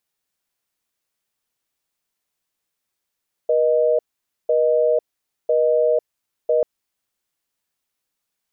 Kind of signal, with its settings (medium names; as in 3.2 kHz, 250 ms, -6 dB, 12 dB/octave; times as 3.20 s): call progress tone busy tone, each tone -17 dBFS 3.14 s